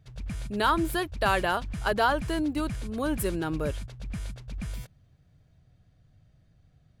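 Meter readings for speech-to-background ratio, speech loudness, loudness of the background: 10.0 dB, -28.5 LUFS, -38.5 LUFS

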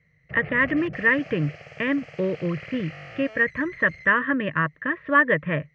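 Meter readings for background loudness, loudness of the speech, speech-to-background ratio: -40.5 LUFS, -23.5 LUFS, 17.0 dB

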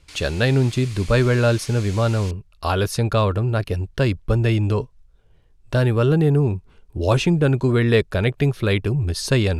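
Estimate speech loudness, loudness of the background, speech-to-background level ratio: -20.0 LUFS, -39.0 LUFS, 19.0 dB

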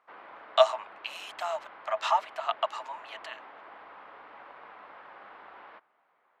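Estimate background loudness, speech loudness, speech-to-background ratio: -49.0 LUFS, -30.0 LUFS, 19.0 dB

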